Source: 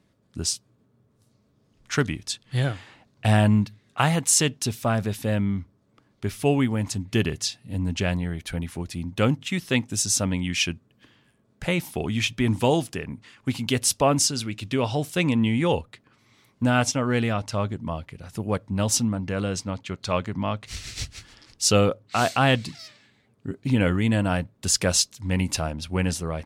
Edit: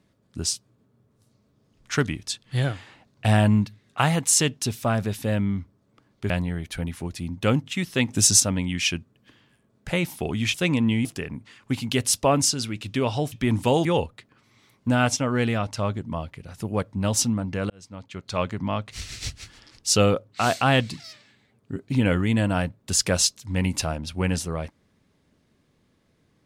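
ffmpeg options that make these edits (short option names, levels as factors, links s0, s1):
-filter_complex "[0:a]asplit=9[s0][s1][s2][s3][s4][s5][s6][s7][s8];[s0]atrim=end=6.302[s9];[s1]atrim=start=8.048:end=9.842[s10];[s2]atrim=start=9.838:end=10.152,asetpts=PTS-STARTPTS,volume=2.24[s11];[s3]atrim=start=10.148:end=12.292[s12];[s4]atrim=start=15.088:end=15.602[s13];[s5]atrim=start=12.818:end=15.092[s14];[s6]atrim=start=12.288:end=12.822[s15];[s7]atrim=start=15.598:end=19.45,asetpts=PTS-STARTPTS,afade=t=out:st=3.848:d=0.004:c=hsin[s16];[s8]atrim=start=19.45,asetpts=PTS-STARTPTS,afade=t=in:d=0.77[s17];[s9][s10]acrossfade=d=0.004:c1=hsin:c2=hsin[s18];[s18][s11]acrossfade=d=0.004:c1=hsin:c2=hsin[s19];[s19][s12]acrossfade=d=0.004:c1=hsin:c2=hsin[s20];[s20][s13]acrossfade=d=0.004:c1=hsin:c2=hsin[s21];[s21][s14]acrossfade=d=0.004:c1=hsin:c2=hsin[s22];[s22][s15]acrossfade=d=0.004:c1=hsin:c2=hsin[s23];[s16][s17]concat=n=2:v=0:a=1[s24];[s23][s24]acrossfade=d=0.004:c1=hsin:c2=hsin"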